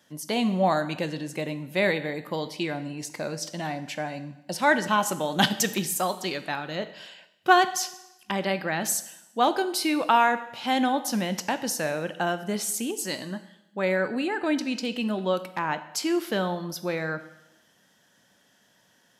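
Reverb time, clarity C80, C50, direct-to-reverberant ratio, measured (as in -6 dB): 0.90 s, 16.0 dB, 13.5 dB, 11.0 dB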